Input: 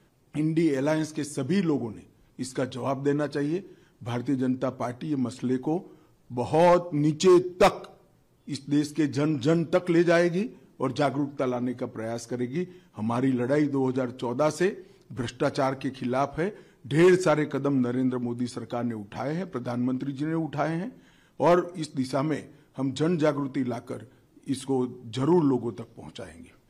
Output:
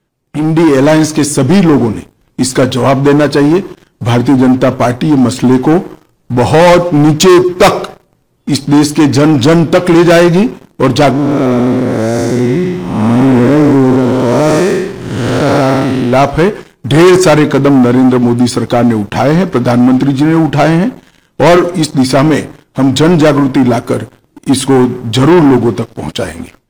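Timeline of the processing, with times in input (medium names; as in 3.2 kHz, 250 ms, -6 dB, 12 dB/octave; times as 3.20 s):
11.11–16.13 s: spectral blur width 305 ms
whole clip: waveshaping leveller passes 3; level rider gain up to 11.5 dB; trim +2 dB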